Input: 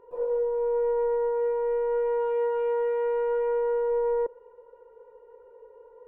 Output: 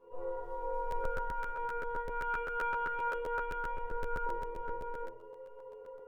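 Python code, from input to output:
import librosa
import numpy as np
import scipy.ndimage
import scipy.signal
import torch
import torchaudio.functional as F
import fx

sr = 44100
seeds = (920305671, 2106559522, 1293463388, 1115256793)

y = fx.cheby1_bandstop(x, sr, low_hz=340.0, high_hz=720.0, order=2, at=(1.64, 2.33), fade=0.02)
y = fx.peak_eq(y, sr, hz=2400.0, db=-12.0, octaves=1.4, at=(3.07, 3.87))
y = fx.stiff_resonator(y, sr, f0_hz=63.0, decay_s=0.53, stiffness=0.008)
y = fx.echo_multitap(y, sr, ms=(43, 105, 225, 265, 428, 760), db=(-10.5, -17.5, -16.5, -8.5, -5.5, -4.5))
y = fx.dmg_crackle(y, sr, seeds[0], per_s=140.0, level_db=-67.0, at=(0.42, 1.13), fade=0.02)
y = fx.room_shoebox(y, sr, seeds[1], volume_m3=350.0, walls='furnished', distance_m=5.4)
y = fx.dynamic_eq(y, sr, hz=530.0, q=2.8, threshold_db=-46.0, ratio=4.0, max_db=-6)
y = fx.buffer_crackle(y, sr, first_s=0.9, period_s=0.13, block=512, kind='repeat')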